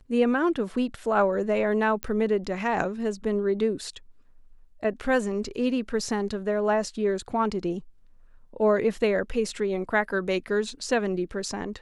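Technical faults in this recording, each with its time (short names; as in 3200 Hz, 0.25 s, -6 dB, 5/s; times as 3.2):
2.03 pop -13 dBFS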